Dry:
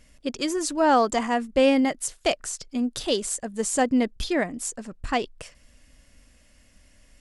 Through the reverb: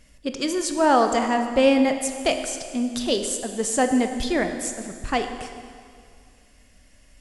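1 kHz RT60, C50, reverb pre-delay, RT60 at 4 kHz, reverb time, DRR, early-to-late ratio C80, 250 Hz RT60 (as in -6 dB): 2.2 s, 7.5 dB, 19 ms, 2.0 s, 2.2 s, 6.5 dB, 8.5 dB, 2.2 s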